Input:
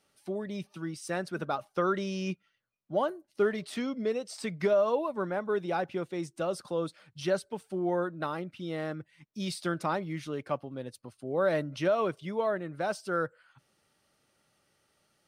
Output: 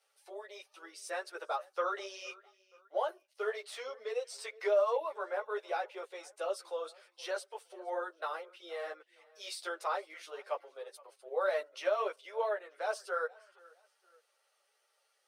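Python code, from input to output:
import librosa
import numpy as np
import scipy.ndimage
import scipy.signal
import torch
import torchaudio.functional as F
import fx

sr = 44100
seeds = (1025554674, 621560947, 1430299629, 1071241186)

p1 = scipy.signal.sosfilt(scipy.signal.butter(8, 440.0, 'highpass', fs=sr, output='sos'), x)
p2 = p1 + fx.echo_feedback(p1, sr, ms=469, feedback_pct=37, wet_db=-24, dry=0)
y = fx.ensemble(p2, sr)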